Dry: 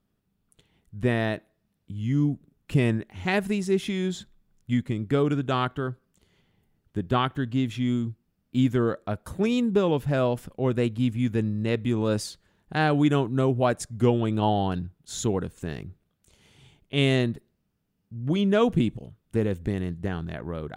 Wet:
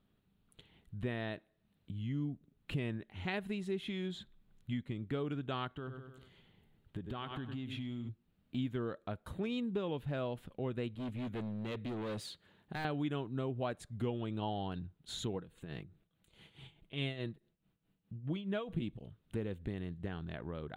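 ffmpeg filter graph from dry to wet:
ffmpeg -i in.wav -filter_complex "[0:a]asettb=1/sr,asplit=3[link_01][link_02][link_03];[link_01]atrim=end=5.754[link_04];[link_02]atrim=start=5.75:end=8.09,asetpts=PTS-STARTPTS,afade=type=in:duration=0.004:curve=qsin,afade=type=out:start_time=2.336:duration=0.004:curve=qsin,aecho=1:1:99|198|297|396:0.237|0.0972|0.0399|0.0163,atrim=end_sample=103194,acompressor=threshold=-29dB:ratio=4:attack=3.2:release=140:knee=1:detection=peak[link_05];[link_03]atrim=start=8.086[link_06];[link_04][link_05]acrossfade=duration=0.004:curve1=hsin:curve2=qsin[link_07];[link_07][link_06]acrossfade=duration=0.004:curve1=qsin:curve2=hsin,asettb=1/sr,asplit=3[link_08][link_09][link_10];[link_08]atrim=end=10.954[link_11];[link_09]atrim=start=10.95:end=12.85,asetpts=PTS-STARTPTS,afade=type=in:duration=0.004:curve=qsin,afade=type=out:start_time=1.896:duration=0.004:curve=qsin,highpass=100,asoftclip=type=hard:threshold=-28dB[link_12];[link_10]atrim=start=12.846[link_13];[link_11][link_12]acrossfade=duration=0.004:curve1=hsin:curve2=qsin[link_14];[link_14][link_13]acrossfade=duration=0.004:curve1=qsin:curve2=hsin,asettb=1/sr,asplit=3[link_15][link_16][link_17];[link_15]atrim=end=15.354[link_18];[link_16]atrim=start=15.35:end=18.82,asetpts=PTS-STARTPTS,afade=type=in:duration=0.004:curve=qsin,afade=type=out:start_time=3.466:duration=0.004:curve=qsin,equalizer=frequency=5600:width=2.6:gain=-4.5,tremolo=f=4.7:d=0.76,aecho=1:1:6.1:0.34,atrim=end_sample=153027[link_19];[link_17]atrim=start=18.816[link_20];[link_18][link_19]acrossfade=duration=0.004:curve1=hsin:curve2=qsin[link_21];[link_21][link_20]acrossfade=duration=0.004:curve1=qsin:curve2=hsin,highshelf=frequency=4500:width_type=q:width=3:gain=-6,bandreject=frequency=3500:width=28,acompressor=threshold=-46dB:ratio=2" out.wav

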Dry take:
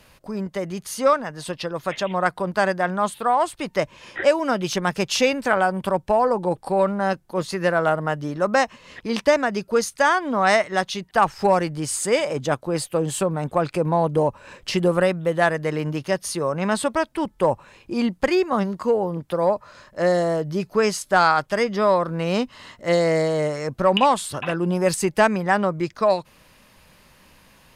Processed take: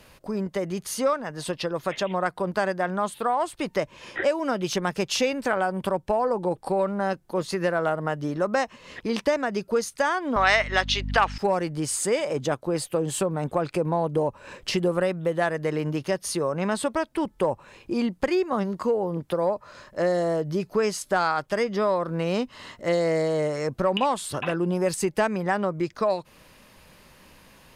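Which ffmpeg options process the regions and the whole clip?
ffmpeg -i in.wav -filter_complex "[0:a]asettb=1/sr,asplit=3[link_01][link_02][link_03];[link_01]atrim=end=10.364[link_04];[link_02]atrim=start=10.36:end=11.38,asetpts=PTS-STARTPTS,afade=type=in:duration=0.004:curve=qsin,afade=type=out:start_time=1.016:duration=0.004:curve=qsin,highpass=310,lowpass=7800,equalizer=frequency=2800:width=0.45:gain=14.5,aeval=exprs='val(0)+0.0562*(sin(2*PI*50*n/s)+sin(2*PI*2*50*n/s)/2+sin(2*PI*3*50*n/s)/3+sin(2*PI*4*50*n/s)/4+sin(2*PI*5*50*n/s)/5)':channel_layout=same[link_05];[link_03]atrim=start=11.376[link_06];[link_04][link_05]acrossfade=duration=0.004:curve1=hsin:curve2=qsin[link_07];[link_07][link_06]acrossfade=duration=0.004:curve1=qsin:curve2=hsin,equalizer=frequency=390:width_type=o:width=1.2:gain=3,acompressor=threshold=-25dB:ratio=2" out.wav

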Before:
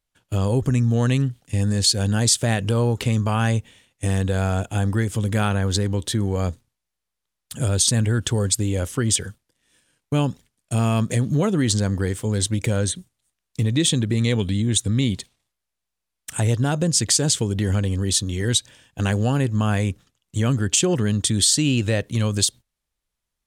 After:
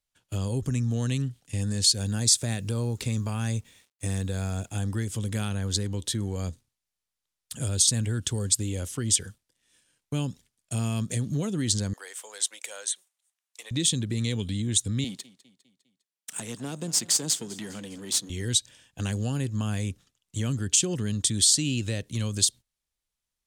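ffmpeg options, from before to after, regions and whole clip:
ffmpeg -i in.wav -filter_complex "[0:a]asettb=1/sr,asplit=3[link_01][link_02][link_03];[link_01]atrim=end=1.984[link_04];[link_02]atrim=start=1.98:end=4.76,asetpts=PTS-STARTPTS,afade=type=in:duration=0.004:curve=qsin,afade=type=out:start_time=2.776:duration=0.004:curve=qsin,bandreject=frequency=3000:width=7.1,acrusher=bits=8:mix=0:aa=0.5[link_05];[link_03]atrim=start=4.756[link_06];[link_04][link_05]acrossfade=duration=0.004:curve1=hsin:curve2=qsin[link_07];[link_07][link_06]acrossfade=duration=0.004:curve1=qsin:curve2=hsin,asettb=1/sr,asplit=3[link_08][link_09][link_10];[link_08]atrim=end=11.934[link_11];[link_09]atrim=start=11.93:end=13.71,asetpts=PTS-STARTPTS,afade=type=in:duration=0.004:curve=qsin,afade=type=out:start_time=1.776:duration=0.004:curve=qsin,highpass=frequency=630:width=0.5412,highpass=frequency=630:width=1.3066,equalizer=frequency=4600:width=2.2:gain=-3.5[link_12];[link_10]atrim=start=13.706[link_13];[link_11][link_12]acrossfade=duration=0.004:curve1=hsin:curve2=qsin[link_14];[link_14][link_13]acrossfade=duration=0.004:curve1=qsin:curve2=hsin,asettb=1/sr,asplit=3[link_15][link_16][link_17];[link_15]atrim=end=15.044[link_18];[link_16]atrim=start=15.04:end=18.3,asetpts=PTS-STARTPTS,afade=type=in:duration=0.004:curve=qsin,afade=type=out:start_time=3.256:duration=0.004:curve=qsin,aeval=exprs='if(lt(val(0),0),0.447*val(0),val(0))':channel_layout=same,highpass=frequency=170:width=0.5412,highpass=frequency=170:width=1.3066,aecho=1:1:202|404|606|808:0.106|0.054|0.0276|0.0141,atrim=end_sample=143766[link_19];[link_17]atrim=start=18.296[link_20];[link_18][link_19]acrossfade=duration=0.004:curve1=hsin:curve2=qsin[link_21];[link_21][link_20]acrossfade=duration=0.004:curve1=qsin:curve2=hsin,equalizer=frequency=6800:width_type=o:width=2.8:gain=6,acrossover=split=370|3000[link_22][link_23][link_24];[link_23]acompressor=threshold=-36dB:ratio=2[link_25];[link_22][link_25][link_24]amix=inputs=3:normalize=0,volume=-7.5dB" out.wav

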